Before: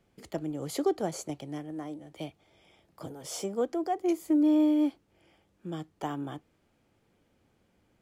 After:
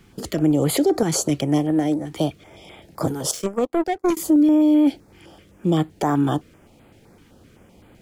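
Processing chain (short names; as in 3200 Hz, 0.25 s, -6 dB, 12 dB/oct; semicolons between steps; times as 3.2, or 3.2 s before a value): 3.31–4.17 power-law curve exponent 2; maximiser +27.5 dB; stepped notch 7.8 Hz 600–5700 Hz; gain -8.5 dB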